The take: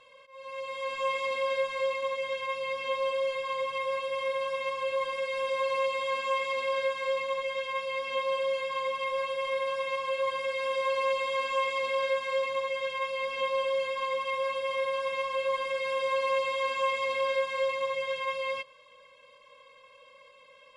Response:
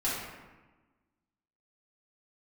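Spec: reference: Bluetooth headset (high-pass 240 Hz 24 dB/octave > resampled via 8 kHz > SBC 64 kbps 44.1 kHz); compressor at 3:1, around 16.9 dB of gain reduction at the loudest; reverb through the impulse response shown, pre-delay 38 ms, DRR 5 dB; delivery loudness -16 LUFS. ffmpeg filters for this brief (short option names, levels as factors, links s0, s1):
-filter_complex "[0:a]acompressor=threshold=0.00355:ratio=3,asplit=2[s0][s1];[1:a]atrim=start_sample=2205,adelay=38[s2];[s1][s2]afir=irnorm=-1:irlink=0,volume=0.224[s3];[s0][s3]amix=inputs=2:normalize=0,highpass=f=240:w=0.5412,highpass=f=240:w=1.3066,aresample=8000,aresample=44100,volume=25.1" -ar 44100 -c:a sbc -b:a 64k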